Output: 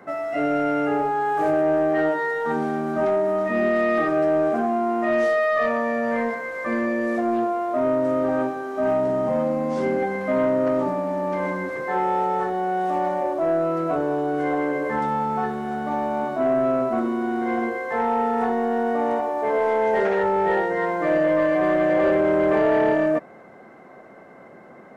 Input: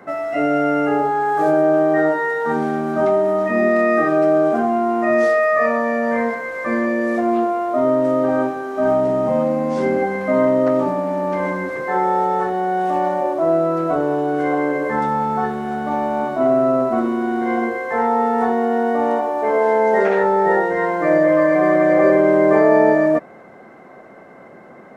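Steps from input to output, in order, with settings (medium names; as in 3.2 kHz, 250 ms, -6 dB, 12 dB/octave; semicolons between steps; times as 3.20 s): saturation -9 dBFS, distortion -19 dB; trim -3.5 dB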